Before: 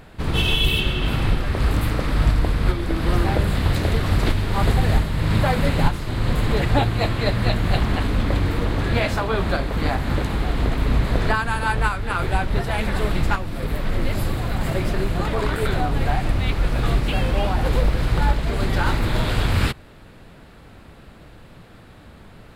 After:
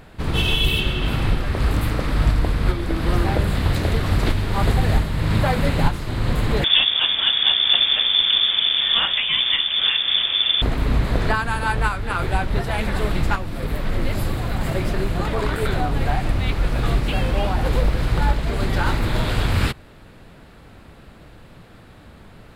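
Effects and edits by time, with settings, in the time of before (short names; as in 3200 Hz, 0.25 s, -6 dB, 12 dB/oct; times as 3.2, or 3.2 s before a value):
6.64–10.62 inverted band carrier 3500 Hz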